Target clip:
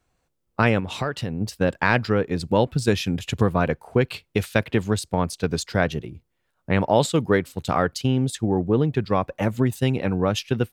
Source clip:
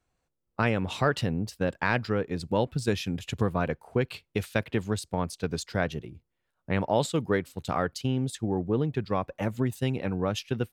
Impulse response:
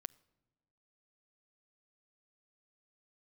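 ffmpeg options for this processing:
-filter_complex "[0:a]asplit=3[a][b][c];[a]afade=t=out:st=0.79:d=0.02[d];[b]acompressor=threshold=-33dB:ratio=2.5,afade=t=in:st=0.79:d=0.02,afade=t=out:st=1.4:d=0.02[e];[c]afade=t=in:st=1.4:d=0.02[f];[d][e][f]amix=inputs=3:normalize=0,volume=6.5dB"

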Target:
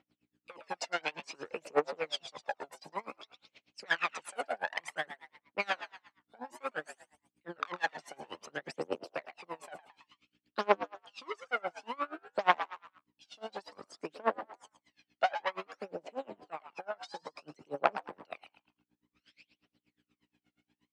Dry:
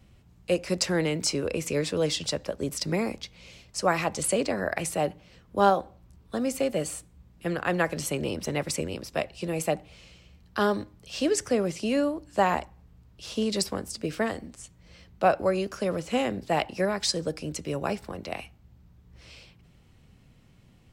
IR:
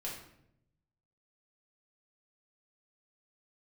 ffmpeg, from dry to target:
-filter_complex "[0:a]afwtdn=0.0355,asettb=1/sr,asplit=3[a][b][c];[a]atrim=end=15.594[d];[b]atrim=start=15.59:end=17.74,asetpts=PTS-STARTPTS,afade=t=in:d=0.004:c=qsin,afade=t=out:st=2.146:d=0.004:c=qsin,acompressor=threshold=-29dB:ratio=10[e];[c]atrim=start=17.736[f];[d][e]acrossfade=d=0.004:c1=hsin:c2=qsin[g];[g][f]acrossfade=d=0.004:c1=qsin:c2=hsin,asoftclip=type=tanh:threshold=-26dB,crystalizer=i=9:c=0,aphaser=in_gain=1:out_gain=1:delay=1.5:decay=0.72:speed=0.56:type=triangular,aeval=exprs='val(0)+0.00316*(sin(2*PI*60*n/s)+sin(2*PI*2*60*n/s)/2+sin(2*PI*3*60*n/s)/3+sin(2*PI*4*60*n/s)/4+sin(2*PI*5*60*n/s)/5)':c=same,highpass=500,lowpass=2.5k,asplit=5[h][i][j][k][l];[i]adelay=109,afreqshift=100,volume=-12dB[m];[j]adelay=218,afreqshift=200,volume=-19.7dB[n];[k]adelay=327,afreqshift=300,volume=-27.5dB[o];[l]adelay=436,afreqshift=400,volume=-35.2dB[p];[h][m][n][o][p]amix=inputs=5:normalize=0,aeval=exprs='val(0)*pow(10,-29*(0.5-0.5*cos(2*PI*8.4*n/s))/20)':c=same"

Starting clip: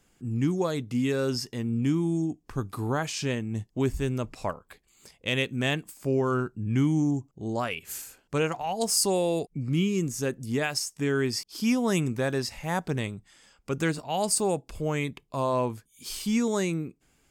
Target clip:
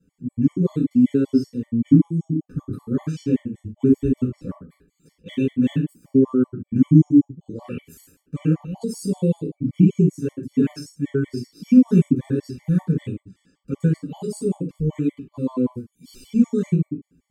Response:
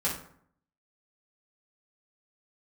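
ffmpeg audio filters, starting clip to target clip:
-filter_complex "[0:a]lowshelf=f=480:t=q:w=3:g=12.5[a];[1:a]atrim=start_sample=2205,atrim=end_sample=6615[b];[a][b]afir=irnorm=-1:irlink=0,afftfilt=real='re*gt(sin(2*PI*5.2*pts/sr)*(1-2*mod(floor(b*sr/1024/590),2)),0)':imag='im*gt(sin(2*PI*5.2*pts/sr)*(1-2*mod(floor(b*sr/1024/590),2)),0)':win_size=1024:overlap=0.75,volume=-14.5dB"

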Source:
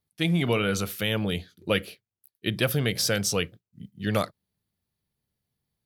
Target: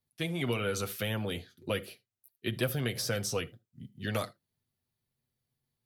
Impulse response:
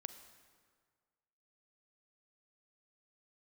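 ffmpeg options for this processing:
-filter_complex "[0:a]acrossover=split=290|1800|6000[a][b][c][d];[a]acompressor=threshold=-32dB:ratio=4[e];[b]acompressor=threshold=-28dB:ratio=4[f];[c]acompressor=threshold=-37dB:ratio=4[g];[d]acompressor=threshold=-35dB:ratio=4[h];[e][f][g][h]amix=inputs=4:normalize=0,asplit=2[i][j];[1:a]atrim=start_sample=2205,atrim=end_sample=3528,adelay=8[k];[j][k]afir=irnorm=-1:irlink=0,volume=-1dB[l];[i][l]amix=inputs=2:normalize=0,volume=-4dB"

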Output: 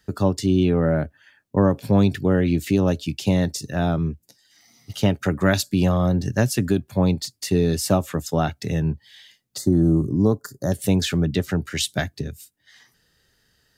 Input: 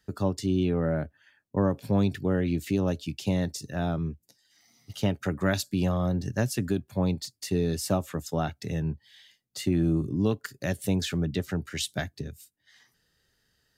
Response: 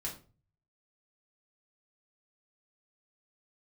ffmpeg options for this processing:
-filter_complex "[0:a]asettb=1/sr,asplit=3[a][b][c];[a]atrim=end=9.584[d];[b]atrim=start=9.58:end=10.72,asetpts=PTS-STARTPTS,afade=t=in:d=0.004:c=qsin,afade=t=out:st=1.136:d=0.004:c=qsin,asuperstop=centerf=2600:order=4:qfactor=0.65[e];[c]atrim=start=10.716[f];[d][e]acrossfade=d=0.004:c1=hsin:c2=qsin[g];[g][f]acrossfade=d=0.004:c1=qsin:c2=hsin,volume=7dB"

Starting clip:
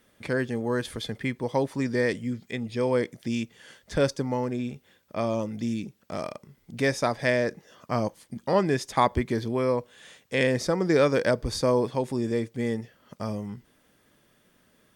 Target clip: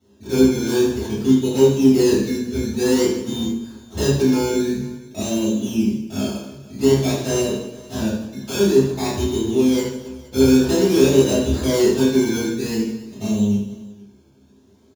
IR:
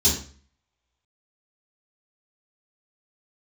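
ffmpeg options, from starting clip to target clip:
-filter_complex "[0:a]equalizer=f=330:w=0.55:g=8.5,acrusher=samples=18:mix=1:aa=0.000001:lfo=1:lforange=10.8:lforate=0.51,asoftclip=type=hard:threshold=-15.5dB,asettb=1/sr,asplit=3[a][b][c];[a]atrim=end=7.414[d];[b]atrim=start=7.41:end=9.77,asetpts=PTS-STARTPTS,afade=t=in:d=0.004:c=qsin,afade=t=out:st=2.356:d=0.004:c=qsin,acrossover=split=1100[e][f];[e]aeval=exprs='val(0)*(1-0.5/2+0.5/2*cos(2*PI*1.4*n/s))':c=same[g];[f]aeval=exprs='val(0)*(1-0.5/2-0.5/2*cos(2*PI*1.4*n/s))':c=same[h];[g][h]amix=inputs=2:normalize=0[i];[c]atrim=start=9.766[j];[d][i]acrossfade=d=0.004:c1=hsin:c2=qsin[k];[k][j]acrossfade=d=0.004:c1=qsin:c2=hsin,aecho=1:1:30|78|154.8|277.7|474.3:0.631|0.398|0.251|0.158|0.1[l];[1:a]atrim=start_sample=2205[m];[l][m]afir=irnorm=-1:irlink=0,volume=-17dB"

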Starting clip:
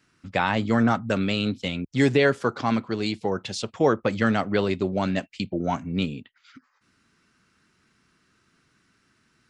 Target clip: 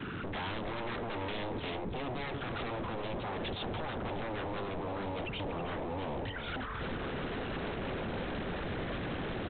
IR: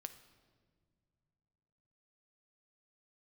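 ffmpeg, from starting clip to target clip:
-filter_complex "[0:a]aeval=exprs='val(0)+0.5*0.0562*sgn(val(0))':c=same,asubboost=boost=10:cutoff=150,highpass=52,equalizer=f=2k:w=4:g=-3.5,anlmdn=100,asplit=2[a][b];[b]acompressor=threshold=-27dB:ratio=16,volume=2.5dB[c];[a][c]amix=inputs=2:normalize=0,alimiter=limit=-14.5dB:level=0:latency=1:release=51,aeval=exprs='val(0)+0.00708*sin(2*PI*440*n/s)':c=same,aresample=8000,aeval=exprs='0.0531*(abs(mod(val(0)/0.0531+3,4)-2)-1)':c=same,aresample=44100,asplit=2[d][e];[e]adelay=320,lowpass=f=2.7k:p=1,volume=-7.5dB,asplit=2[f][g];[g]adelay=320,lowpass=f=2.7k:p=1,volume=0.49,asplit=2[h][i];[i]adelay=320,lowpass=f=2.7k:p=1,volume=0.49,asplit=2[j][k];[k]adelay=320,lowpass=f=2.7k:p=1,volume=0.49,asplit=2[l][m];[m]adelay=320,lowpass=f=2.7k:p=1,volume=0.49,asplit=2[n][o];[o]adelay=320,lowpass=f=2.7k:p=1,volume=0.49[p];[d][f][h][j][l][n][p]amix=inputs=7:normalize=0,volume=-7.5dB"

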